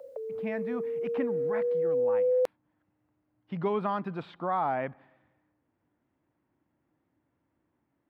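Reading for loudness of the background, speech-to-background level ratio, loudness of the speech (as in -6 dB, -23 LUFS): -29.5 LUFS, -5.0 dB, -34.5 LUFS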